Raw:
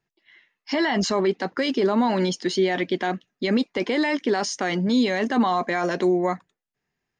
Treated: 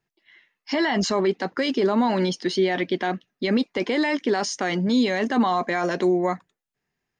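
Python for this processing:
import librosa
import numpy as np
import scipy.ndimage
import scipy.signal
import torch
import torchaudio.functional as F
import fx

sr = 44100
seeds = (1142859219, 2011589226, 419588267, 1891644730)

y = fx.peak_eq(x, sr, hz=7200.0, db=-9.0, octaves=0.21, at=(2.2, 3.64))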